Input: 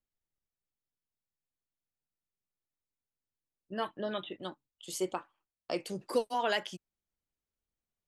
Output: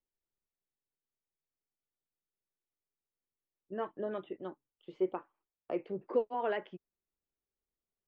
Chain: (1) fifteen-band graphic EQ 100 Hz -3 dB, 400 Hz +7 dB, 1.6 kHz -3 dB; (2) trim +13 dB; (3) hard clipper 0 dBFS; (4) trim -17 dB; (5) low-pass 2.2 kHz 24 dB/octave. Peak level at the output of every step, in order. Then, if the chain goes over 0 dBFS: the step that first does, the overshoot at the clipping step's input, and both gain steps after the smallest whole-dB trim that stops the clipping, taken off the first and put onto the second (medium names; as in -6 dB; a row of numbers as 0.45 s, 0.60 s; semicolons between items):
-15.5 dBFS, -2.5 dBFS, -2.5 dBFS, -19.5 dBFS, -20.0 dBFS; nothing clips